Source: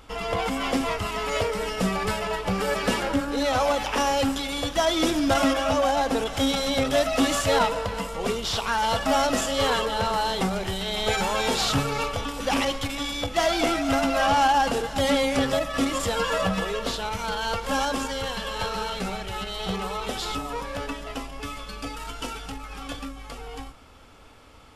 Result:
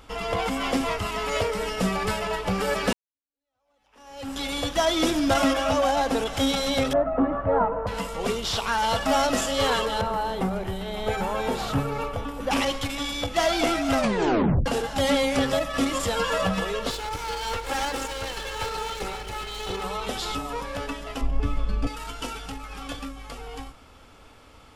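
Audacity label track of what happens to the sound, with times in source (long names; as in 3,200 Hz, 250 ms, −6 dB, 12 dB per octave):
2.930000	4.420000	fade in exponential
6.930000	7.870000	low-pass filter 1,300 Hz 24 dB per octave
10.010000	12.510000	parametric band 5,500 Hz −13 dB 2.6 octaves
13.940000	13.940000	tape stop 0.72 s
16.900000	19.840000	lower of the sound and its delayed copy delay 2.3 ms
21.210000	21.870000	spectral tilt −3.5 dB per octave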